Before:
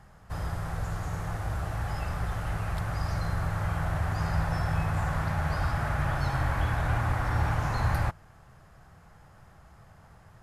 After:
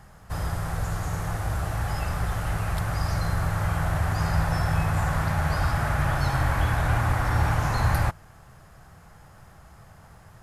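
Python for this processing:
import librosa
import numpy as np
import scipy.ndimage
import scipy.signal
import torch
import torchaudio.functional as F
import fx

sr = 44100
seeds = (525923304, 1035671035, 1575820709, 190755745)

y = fx.high_shelf(x, sr, hz=6300.0, db=7.0)
y = y * librosa.db_to_amplitude(4.0)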